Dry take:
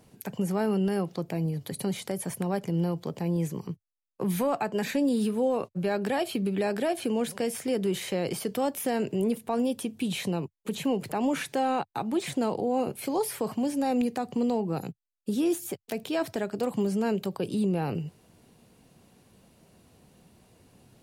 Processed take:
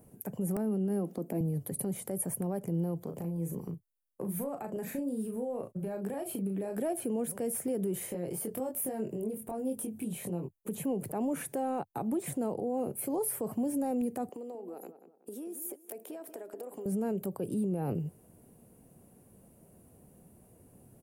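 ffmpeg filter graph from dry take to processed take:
-filter_complex "[0:a]asettb=1/sr,asplit=3[s0][s1][s2];[s0]atrim=end=0.564[s3];[s1]atrim=start=0.56:end=1.41,asetpts=PTS-STARTPTS,afade=t=in:d=0.004:c=qsin,afade=t=out:st=0.846:d=0.004:c=qsin,lowshelf=f=150:t=q:w=3:g=-13.5,acompressor=threshold=0.0562:ratio=6:attack=3.2:release=140:knee=1:detection=peak,aeval=exprs='(mod(9.44*val(0)+1,2)-1)/9.44':c=same[s4];[s2]atrim=start=1.406[s5];[s3][s4]acrossfade=d=0.004:c1=hsin:c2=qsin[s6];[s6][s5]acrossfade=d=0.004:c1=qsin:c2=hsin,asettb=1/sr,asplit=3[s7][s8][s9];[s7]atrim=end=3.044[s10];[s8]atrim=start=3.04:end=6.77,asetpts=PTS-STARTPTS,afade=t=in:d=0.004:c=qsin,afade=t=out:st=3.726:d=0.004:c=qsin,acompressor=threshold=0.0224:ratio=6:attack=3.2:release=140:knee=1:detection=peak,asplit=2[s11][s12];[s12]adelay=36,volume=0.501[s13];[s11][s13]amix=inputs=2:normalize=0,atrim=end_sample=164493[s14];[s9]atrim=start=6.766[s15];[s10][s14]acrossfade=d=0.004:c1=hsin:c2=qsin[s16];[s16][s15]acrossfade=d=0.004:c1=qsin:c2=hsin,asettb=1/sr,asplit=3[s17][s18][s19];[s17]atrim=end=8.064[s20];[s18]atrim=start=8.06:end=10.59,asetpts=PTS-STARTPTS,afade=t=in:d=0.004:c=qsin,afade=t=out:st=2.526:d=0.004:c=qsin,acompressor=threshold=0.0141:ratio=2.5:attack=3.2:release=140:knee=1:detection=peak,asplit=2[s21][s22];[s22]adelay=23,volume=0.708[s23];[s21][s23]amix=inputs=2:normalize=0,atrim=end_sample=111573[s24];[s19]atrim=start=10.586[s25];[s20][s24]acrossfade=d=0.004:c1=hsin:c2=qsin[s26];[s26][s25]acrossfade=d=0.004:c1=qsin:c2=hsin,asettb=1/sr,asplit=3[s27][s28][s29];[s27]atrim=end=14.294[s30];[s28]atrim=start=14.29:end=16.86,asetpts=PTS-STARTPTS,afade=t=in:d=0.004:c=qsin,afade=t=out:st=2.566:d=0.004:c=qsin,highpass=f=320:w=0.5412,highpass=f=320:w=1.3066,acompressor=threshold=0.0126:ratio=16:attack=3.2:release=140:knee=1:detection=peak,asplit=2[s31][s32];[s32]adelay=187,lowpass=f=2200:p=1,volume=0.282,asplit=2[s33][s34];[s34]adelay=187,lowpass=f=2200:p=1,volume=0.34,asplit=2[s35][s36];[s36]adelay=187,lowpass=f=2200:p=1,volume=0.34,asplit=2[s37][s38];[s38]adelay=187,lowpass=f=2200:p=1,volume=0.34[s39];[s31][s33][s35][s37][s39]amix=inputs=5:normalize=0,atrim=end_sample=113337[s40];[s29]atrim=start=16.856[s41];[s30][s40]acrossfade=d=0.004:c1=hsin:c2=qsin[s42];[s42][s41]acrossfade=d=0.004:c1=qsin:c2=hsin,firequalizer=gain_entry='entry(590,0);entry(920,-6);entry(4000,-20);entry(9800,0)':delay=0.05:min_phase=1,alimiter=level_in=1.12:limit=0.0631:level=0:latency=1:release=86,volume=0.891,highshelf=f=6500:g=5.5"

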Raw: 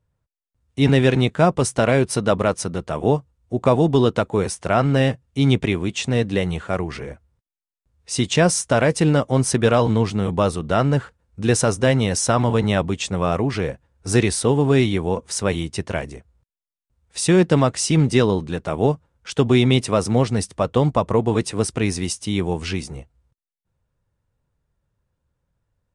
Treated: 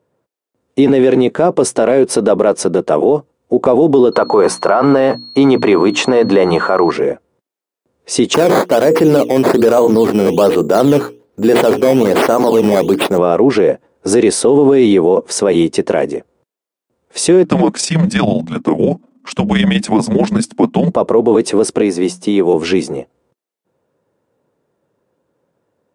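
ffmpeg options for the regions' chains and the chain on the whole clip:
-filter_complex "[0:a]asettb=1/sr,asplit=3[s0][s1][s2];[s0]atrim=end=4.124[s3];[s1]atrim=start=4.12:end=6.91,asetpts=PTS-STARTPTS,afade=t=in:d=0.004:c=qsin,afade=t=out:st=2.786:d=0.004:c=qsin,equalizer=f=1100:w=1.1:g=14.5,bandreject=f=60:t=h:w=6,bandreject=f=120:t=h:w=6,bandreject=f=180:t=h:w=6,bandreject=f=240:t=h:w=6,bandreject=f=300:t=h:w=6,aeval=exprs='val(0)+0.0126*sin(2*PI*4300*n/s)':c=same[s4];[s2]atrim=start=6.906[s5];[s3][s4]acrossfade=d=0.004:c1=hsin:c2=qsin[s6];[s6][s5]acrossfade=d=0.004:c1=qsin:c2=hsin,asettb=1/sr,asplit=3[s7][s8][s9];[s7]atrim=end=8.344[s10];[s8]atrim=start=8.34:end=13.18,asetpts=PTS-STARTPTS,afade=t=in:d=0.004:c=qsin,afade=t=out:st=4.836:d=0.004:c=qsin,bandreject=f=60:t=h:w=6,bandreject=f=120:t=h:w=6,bandreject=f=180:t=h:w=6,bandreject=f=240:t=h:w=6,bandreject=f=300:t=h:w=6,bandreject=f=360:t=h:w=6,bandreject=f=420:t=h:w=6,bandreject=f=480:t=h:w=6,acrusher=samples=11:mix=1:aa=0.000001:lfo=1:lforange=11:lforate=1.2[s11];[s9]atrim=start=13.176[s12];[s10][s11]acrossfade=d=0.004:c1=hsin:c2=qsin[s13];[s13][s12]acrossfade=d=0.004:c1=qsin:c2=hsin,asettb=1/sr,asplit=3[s14][s15][s16];[s14]atrim=end=17.444[s17];[s15]atrim=start=17.44:end=20.92,asetpts=PTS-STARTPTS,afade=t=in:d=0.004:c=qsin,afade=t=out:st=3.476:d=0.004:c=qsin,tremolo=f=25:d=0.571,afreqshift=-320[s18];[s16]atrim=start=20.916[s19];[s17][s18]acrossfade=d=0.004:c1=hsin:c2=qsin[s20];[s20][s19]acrossfade=d=0.004:c1=qsin:c2=hsin,asettb=1/sr,asplit=3[s21][s22][s23];[s21]atrim=end=21.814[s24];[s22]atrim=start=21.81:end=22.54,asetpts=PTS-STARTPTS,afade=t=in:d=0.004:c=qsin,afade=t=out:st=0.726:d=0.004:c=qsin,bandreject=f=60:t=h:w=6,bandreject=f=120:t=h:w=6,bandreject=f=180:t=h:w=6,acrossover=split=570|1500[s25][s26][s27];[s25]acompressor=threshold=0.0562:ratio=4[s28];[s26]acompressor=threshold=0.0112:ratio=4[s29];[s27]acompressor=threshold=0.0178:ratio=4[s30];[s28][s29][s30]amix=inputs=3:normalize=0,highpass=120[s31];[s23]atrim=start=22.536[s32];[s24][s31]acrossfade=d=0.004:c1=hsin:c2=qsin[s33];[s33][s32]acrossfade=d=0.004:c1=qsin:c2=hsin,highpass=220,equalizer=f=400:t=o:w=2.4:g=14.5,alimiter=level_in=2.37:limit=0.891:release=50:level=0:latency=1,volume=0.891"

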